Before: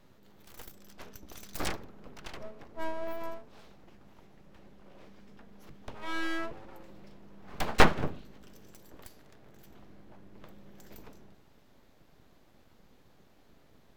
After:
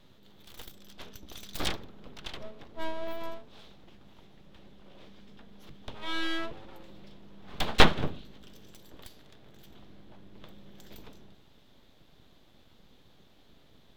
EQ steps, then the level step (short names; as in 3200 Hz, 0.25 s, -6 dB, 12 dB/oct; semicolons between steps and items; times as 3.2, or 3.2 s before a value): low shelf 360 Hz +3 dB; bell 3500 Hz +11.5 dB 0.66 oct; -1.0 dB